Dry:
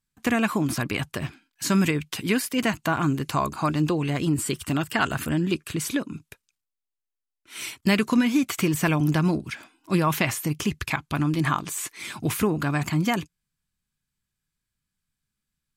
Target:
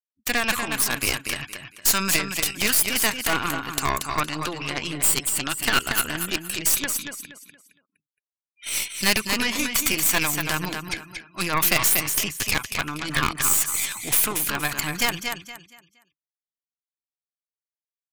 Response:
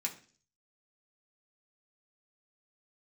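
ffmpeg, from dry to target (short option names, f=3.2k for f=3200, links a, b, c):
-filter_complex "[0:a]afftfilt=real='re*gte(hypot(re,im),0.0112)':imag='im*gte(hypot(re,im),0.0112)':win_size=1024:overlap=0.75,aresample=32000,aresample=44100,tiltshelf=f=820:g=-9.5,aecho=1:1:203|406|609|812:0.501|0.16|0.0513|0.0164,aeval=exprs='0.841*(cos(1*acos(clip(val(0)/0.841,-1,1)))-cos(1*PI/2))+0.266*(cos(2*acos(clip(val(0)/0.841,-1,1)))-cos(2*PI/2))+0.00531*(cos(4*acos(clip(val(0)/0.841,-1,1)))-cos(4*PI/2))+0.188*(cos(6*acos(clip(val(0)/0.841,-1,1)))-cos(6*PI/2))':c=same,highshelf=f=8.7k:g=10.5,asplit=2[a][b];[b]aeval=exprs='(mod(1.68*val(0)+1,2)-1)/1.68':c=same,volume=-9dB[c];[a][c]amix=inputs=2:normalize=0,atempo=0.87,volume=-6dB"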